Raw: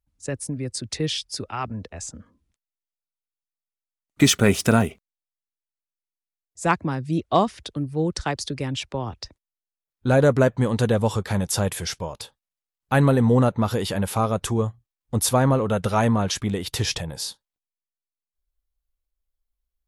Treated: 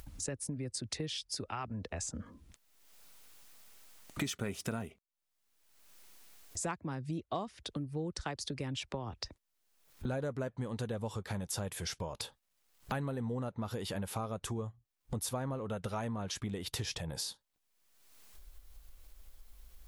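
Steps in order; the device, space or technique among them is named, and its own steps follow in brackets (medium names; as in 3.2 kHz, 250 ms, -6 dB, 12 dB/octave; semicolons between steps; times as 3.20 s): upward and downward compression (upward compressor, threshold -27 dBFS; compression 5:1, threshold -34 dBFS, peak gain reduction 20 dB); trim -2 dB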